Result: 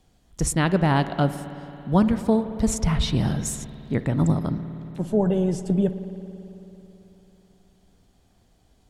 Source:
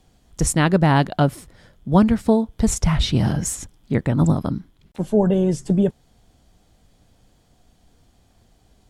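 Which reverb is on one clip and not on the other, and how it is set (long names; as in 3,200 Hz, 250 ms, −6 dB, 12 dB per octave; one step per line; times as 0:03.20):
spring reverb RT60 3.4 s, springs 55 ms, chirp 20 ms, DRR 11 dB
level −4 dB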